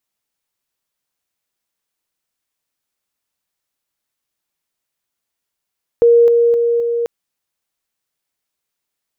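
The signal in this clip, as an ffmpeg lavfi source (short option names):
-f lavfi -i "aevalsrc='pow(10,(-6-3*floor(t/0.26))/20)*sin(2*PI*470*t)':d=1.04:s=44100"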